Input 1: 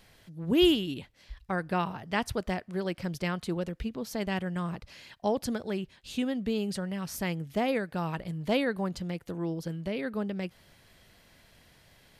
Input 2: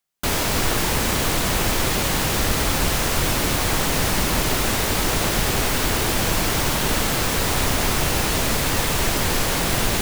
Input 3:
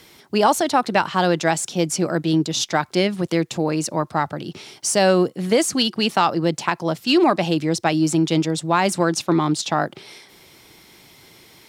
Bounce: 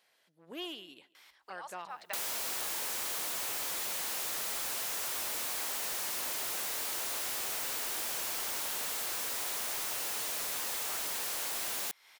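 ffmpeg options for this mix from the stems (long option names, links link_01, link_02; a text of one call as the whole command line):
ffmpeg -i stem1.wav -i stem2.wav -i stem3.wav -filter_complex "[0:a]aeval=exprs='clip(val(0),-1,0.0841)':channel_layout=same,volume=-10dB,asplit=3[link_01][link_02][link_03];[link_02]volume=-23dB[link_04];[1:a]highshelf=frequency=5800:gain=9.5,adelay=1900,volume=-1.5dB[link_05];[2:a]highpass=1200,highshelf=frequency=2600:gain=-10.5,adelay=1150,volume=-2.5dB[link_06];[link_03]apad=whole_len=566150[link_07];[link_06][link_07]sidechaincompress=threshold=-59dB:ratio=8:attack=5.4:release=135[link_08];[link_04]aecho=0:1:138|276|414|552|690:1|0.36|0.13|0.0467|0.0168[link_09];[link_01][link_05][link_08][link_09]amix=inputs=4:normalize=0,highpass=550,asoftclip=type=tanh:threshold=-23.5dB,acompressor=threshold=-36dB:ratio=6" out.wav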